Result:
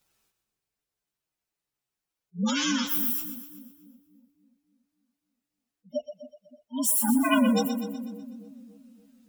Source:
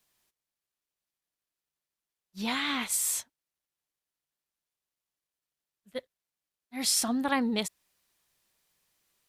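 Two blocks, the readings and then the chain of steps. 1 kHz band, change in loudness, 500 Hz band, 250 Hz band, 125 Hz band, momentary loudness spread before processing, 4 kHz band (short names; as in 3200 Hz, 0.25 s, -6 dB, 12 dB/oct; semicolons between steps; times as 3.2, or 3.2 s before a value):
+3.0 dB, +3.0 dB, +6.0 dB, +7.5 dB, n/a, 16 LU, 0.0 dB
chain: inharmonic rescaling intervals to 120%; spectral gate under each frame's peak -20 dB strong; split-band echo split 450 Hz, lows 0.286 s, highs 0.124 s, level -9.5 dB; gain +8.5 dB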